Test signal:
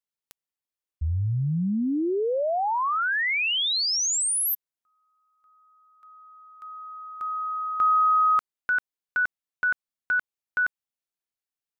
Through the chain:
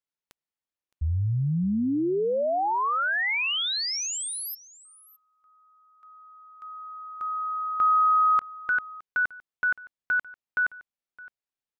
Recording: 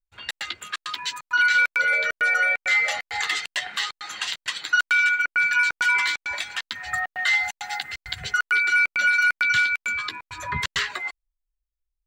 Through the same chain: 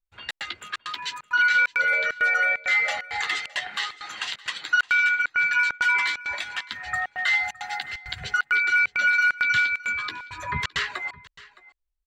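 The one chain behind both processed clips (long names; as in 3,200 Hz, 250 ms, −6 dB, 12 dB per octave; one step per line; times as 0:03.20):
low-pass filter 3,700 Hz 6 dB per octave
on a send: single-tap delay 615 ms −20.5 dB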